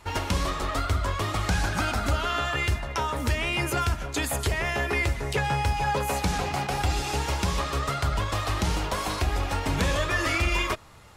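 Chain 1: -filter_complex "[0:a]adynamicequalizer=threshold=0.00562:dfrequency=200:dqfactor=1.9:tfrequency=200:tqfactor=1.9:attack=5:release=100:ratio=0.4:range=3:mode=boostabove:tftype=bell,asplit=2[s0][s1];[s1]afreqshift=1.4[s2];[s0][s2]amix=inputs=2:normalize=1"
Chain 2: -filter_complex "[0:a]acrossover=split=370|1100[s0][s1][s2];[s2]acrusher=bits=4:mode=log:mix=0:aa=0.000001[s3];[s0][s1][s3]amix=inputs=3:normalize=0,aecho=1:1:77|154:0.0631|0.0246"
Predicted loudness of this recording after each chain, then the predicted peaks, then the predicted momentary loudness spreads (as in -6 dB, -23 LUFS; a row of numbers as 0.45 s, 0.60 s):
-29.5 LUFS, -27.0 LUFS; -14.0 dBFS, -12.0 dBFS; 3 LU, 3 LU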